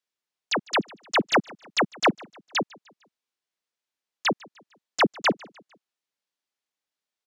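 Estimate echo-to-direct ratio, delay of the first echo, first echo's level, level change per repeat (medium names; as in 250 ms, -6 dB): -23.0 dB, 151 ms, -24.0 dB, -7.0 dB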